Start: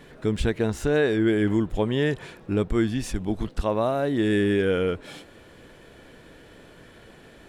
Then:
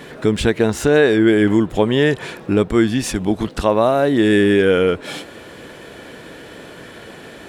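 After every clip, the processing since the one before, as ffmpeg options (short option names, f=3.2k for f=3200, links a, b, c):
-filter_complex "[0:a]highpass=f=170:p=1,asplit=2[a][b];[b]acompressor=threshold=-32dB:ratio=6,volume=-1dB[c];[a][c]amix=inputs=2:normalize=0,volume=7.5dB"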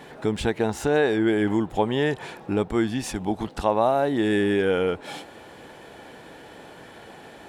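-af "equalizer=f=820:t=o:w=0.41:g=10.5,volume=-8.5dB"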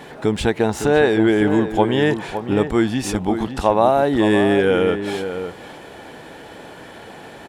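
-filter_complex "[0:a]asplit=2[a][b];[b]adelay=559.8,volume=-9dB,highshelf=f=4k:g=-12.6[c];[a][c]amix=inputs=2:normalize=0,volume=5.5dB"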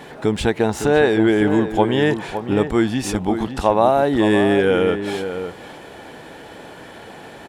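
-af anull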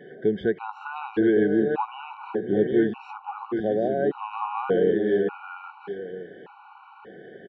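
-af "highpass=180,equalizer=f=190:t=q:w=4:g=4,equalizer=f=270:t=q:w=4:g=-7,equalizer=f=390:t=q:w=4:g=7,equalizer=f=650:t=q:w=4:g=-10,equalizer=f=1.1k:t=q:w=4:g=5,equalizer=f=2.1k:t=q:w=4:g=-10,lowpass=f=2.5k:w=0.5412,lowpass=f=2.5k:w=1.3066,aecho=1:1:760:0.501,afftfilt=real='re*gt(sin(2*PI*0.85*pts/sr)*(1-2*mod(floor(b*sr/1024/750),2)),0)':imag='im*gt(sin(2*PI*0.85*pts/sr)*(1-2*mod(floor(b*sr/1024/750),2)),0)':win_size=1024:overlap=0.75,volume=-4.5dB"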